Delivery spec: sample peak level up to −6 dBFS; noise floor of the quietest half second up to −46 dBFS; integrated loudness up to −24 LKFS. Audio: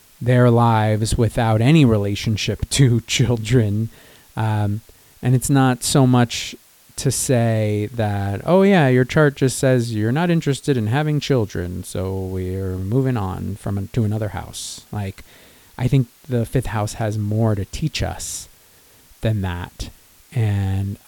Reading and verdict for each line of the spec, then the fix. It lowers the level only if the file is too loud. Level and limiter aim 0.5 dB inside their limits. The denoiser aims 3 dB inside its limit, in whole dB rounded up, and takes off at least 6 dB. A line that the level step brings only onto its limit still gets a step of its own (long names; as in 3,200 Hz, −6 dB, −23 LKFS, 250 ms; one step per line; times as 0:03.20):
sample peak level −3.0 dBFS: out of spec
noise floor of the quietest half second −51 dBFS: in spec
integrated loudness −19.5 LKFS: out of spec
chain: level −5 dB